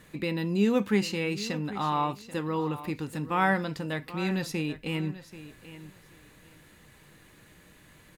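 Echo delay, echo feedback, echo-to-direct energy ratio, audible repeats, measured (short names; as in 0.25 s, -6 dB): 0.785 s, 19%, -15.0 dB, 2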